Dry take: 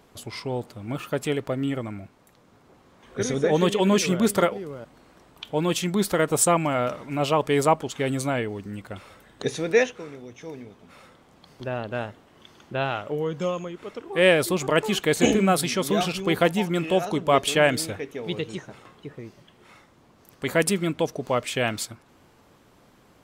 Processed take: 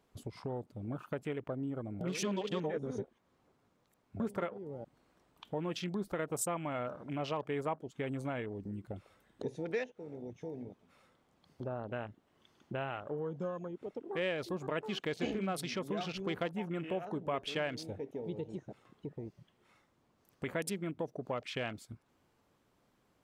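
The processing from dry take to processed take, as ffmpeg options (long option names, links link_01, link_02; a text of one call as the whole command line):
ffmpeg -i in.wav -filter_complex "[0:a]asplit=3[link_01][link_02][link_03];[link_01]atrim=end=2.012[link_04];[link_02]atrim=start=2.008:end=4.202,asetpts=PTS-STARTPTS,areverse[link_05];[link_03]atrim=start=4.198[link_06];[link_04][link_05]acrossfade=duration=0.004:curve1=hsin:curve2=hsin[link_07];[link_07][link_06]acrossfade=duration=0.004:curve1=hsin:curve2=hsin,afwtdn=0.0178,acompressor=threshold=-41dB:ratio=2.5" out.wav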